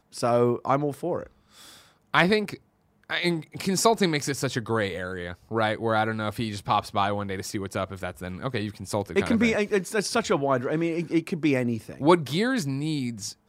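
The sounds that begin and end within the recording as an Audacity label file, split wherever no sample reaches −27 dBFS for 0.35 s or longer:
2.150000	2.540000	sound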